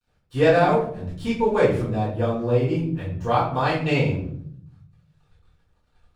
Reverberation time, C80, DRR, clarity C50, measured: 0.65 s, 9.0 dB, -11.0 dB, 4.5 dB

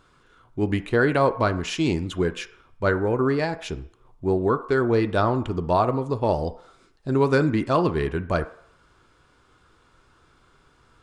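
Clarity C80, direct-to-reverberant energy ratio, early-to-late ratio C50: 18.0 dB, 9.0 dB, 15.0 dB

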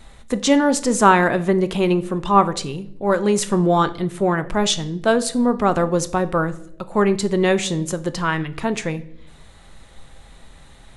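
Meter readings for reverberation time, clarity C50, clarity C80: 0.75 s, 17.0 dB, 20.5 dB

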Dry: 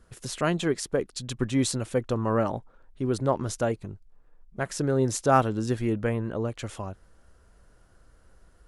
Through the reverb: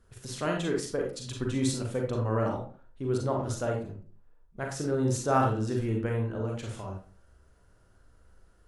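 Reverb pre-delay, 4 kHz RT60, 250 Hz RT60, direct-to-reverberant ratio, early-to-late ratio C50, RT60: 36 ms, 0.25 s, 0.50 s, 0.5 dB, 4.5 dB, 0.45 s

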